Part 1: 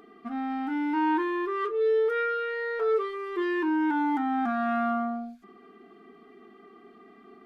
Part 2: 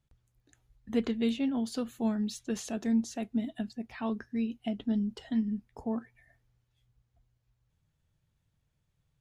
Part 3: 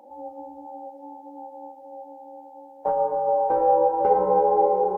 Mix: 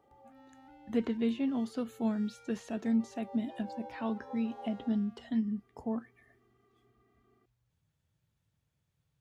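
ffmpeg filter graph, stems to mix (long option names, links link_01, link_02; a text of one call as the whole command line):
ffmpeg -i stem1.wav -i stem2.wav -i stem3.wav -filter_complex "[0:a]acompressor=threshold=-27dB:ratio=6,asoftclip=type=tanh:threshold=-38dB,volume=-18.5dB[link_01];[1:a]acrossover=split=2600[link_02][link_03];[link_03]acompressor=threshold=-52dB:ratio=4:attack=1:release=60[link_04];[link_02][link_04]amix=inputs=2:normalize=0,highpass=68,volume=-1.5dB,asplit=2[link_05][link_06];[2:a]highpass=530,volume=-19.5dB[link_07];[link_06]apad=whole_len=219498[link_08];[link_07][link_08]sidechaincompress=threshold=-40dB:ratio=8:attack=16:release=390[link_09];[link_01][link_05][link_09]amix=inputs=3:normalize=0" out.wav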